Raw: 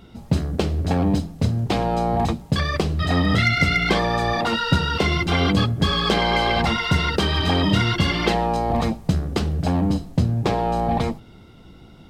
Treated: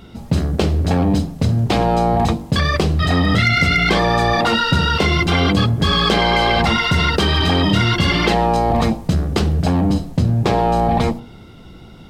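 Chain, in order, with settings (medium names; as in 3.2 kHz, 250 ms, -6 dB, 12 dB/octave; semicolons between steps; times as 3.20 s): de-hum 47.39 Hz, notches 22; in parallel at -3 dB: compressor with a negative ratio -22 dBFS; on the sum: trim +1 dB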